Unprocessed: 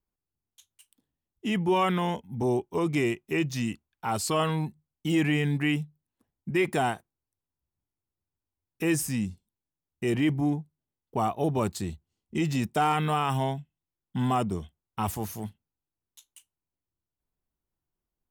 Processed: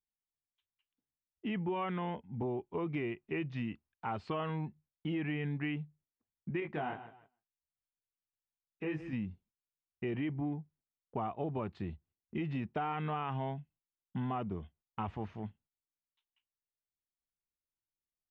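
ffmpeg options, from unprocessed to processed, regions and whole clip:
ffmpeg -i in.wav -filter_complex "[0:a]asettb=1/sr,asplit=3[link_01][link_02][link_03];[link_01]atrim=end=6.604[link_04];[link_02]atrim=start=6.6:end=9.13,asetpts=PTS-STARTPTS,afade=type=in:duration=0.004:curve=qsin,afade=type=out:start_time=2.526:duration=0.004:curve=qsin,aecho=1:1:153|306|459:0.178|0.0498|0.0139,atrim=end_sample=111573,flanger=delay=18:depth=2.5:speed=2[link_05];[link_03]atrim=start=9.126[link_06];[link_04][link_05]acrossfade=duration=0.004:curve1=hsin:curve2=qsin[link_07];[link_07][link_06]acrossfade=duration=0.004:curve1=qsin:curve2=hsin,lowpass=frequency=2800:width=0.5412,lowpass=frequency=2800:width=1.3066,agate=range=-12dB:threshold=-58dB:ratio=16:detection=peak,acompressor=threshold=-27dB:ratio=6,volume=-5.5dB" out.wav

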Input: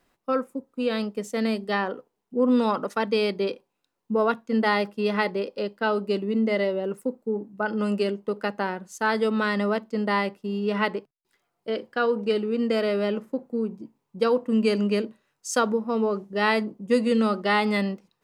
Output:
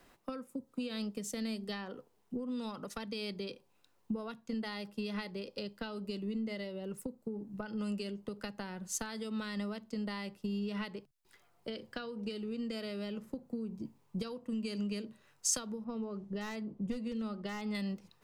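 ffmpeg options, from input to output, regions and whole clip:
ffmpeg -i in.wav -filter_complex "[0:a]asettb=1/sr,asplit=3[link_01][link_02][link_03];[link_01]atrim=end=15.844[link_04];[link_02]atrim=start=15.84:end=17.75,asetpts=PTS-STARTPTS,afade=type=in:duration=0.004:curve=qsin,afade=type=out:start_time=1.906:duration=0.004:curve=qsin,lowpass=frequency=1900:poles=1,volume=15dB,asoftclip=hard,volume=-15dB[link_05];[link_03]atrim=start=17.746[link_06];[link_04][link_05]acrossfade=duration=0.004:curve1=hsin:curve2=qsin[link_07];[link_07][link_06]acrossfade=duration=0.004:curve1=qsin:curve2=hsin,acompressor=threshold=-33dB:ratio=10,asubboost=boost=2.5:cutoff=120,acrossover=split=210|3000[link_08][link_09][link_10];[link_09]acompressor=threshold=-52dB:ratio=3[link_11];[link_08][link_11][link_10]amix=inputs=3:normalize=0,volume=5.5dB" out.wav

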